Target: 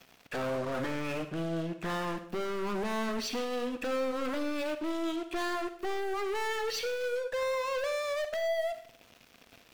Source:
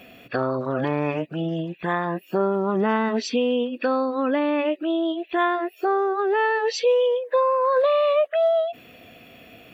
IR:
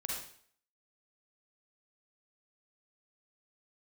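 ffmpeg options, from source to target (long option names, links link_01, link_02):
-filter_complex "[0:a]aeval=exprs='sgn(val(0))*max(abs(val(0))-0.00668,0)':channel_layout=same,aeval=exprs='(tanh(50.1*val(0)+0.2)-tanh(0.2))/50.1':channel_layout=same,asplit=2[link_01][link_02];[1:a]atrim=start_sample=2205[link_03];[link_02][link_03]afir=irnorm=-1:irlink=0,volume=-7dB[link_04];[link_01][link_04]amix=inputs=2:normalize=0"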